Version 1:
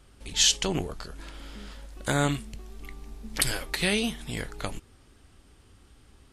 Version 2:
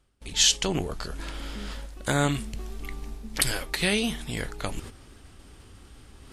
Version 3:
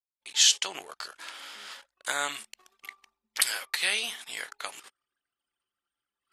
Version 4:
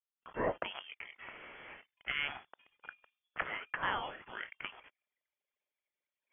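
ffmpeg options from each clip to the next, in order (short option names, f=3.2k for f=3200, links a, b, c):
-af "agate=range=-20dB:threshold=-45dB:ratio=16:detection=peak,areverse,acompressor=mode=upward:threshold=-28dB:ratio=2.5,areverse,volume=1dB"
-af "highpass=1k,anlmdn=0.01"
-af "lowpass=f=3.1k:t=q:w=0.5098,lowpass=f=3.1k:t=q:w=0.6013,lowpass=f=3.1k:t=q:w=0.9,lowpass=f=3.1k:t=q:w=2.563,afreqshift=-3600,volume=-5dB"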